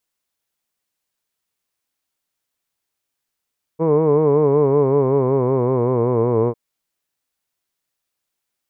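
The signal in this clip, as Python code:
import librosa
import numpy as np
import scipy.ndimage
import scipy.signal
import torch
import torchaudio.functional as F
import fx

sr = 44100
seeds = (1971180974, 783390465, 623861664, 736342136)

y = fx.vowel(sr, seeds[0], length_s=2.75, word='hood', hz=157.0, glide_st=-5.5, vibrato_hz=5.3, vibrato_st=0.9)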